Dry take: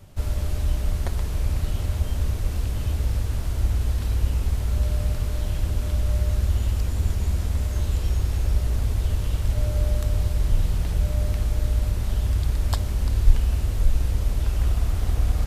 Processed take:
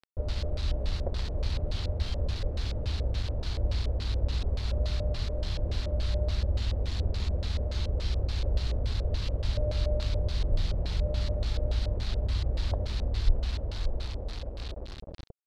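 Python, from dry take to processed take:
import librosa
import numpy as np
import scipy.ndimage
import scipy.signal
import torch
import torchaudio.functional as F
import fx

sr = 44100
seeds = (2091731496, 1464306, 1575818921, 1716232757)

y = fx.fade_out_tail(x, sr, length_s=2.68)
y = fx.quant_dither(y, sr, seeds[0], bits=6, dither='none')
y = fx.filter_lfo_lowpass(y, sr, shape='square', hz=3.5, low_hz=560.0, high_hz=4200.0, q=3.8)
y = F.gain(torch.from_numpy(y), -6.5).numpy()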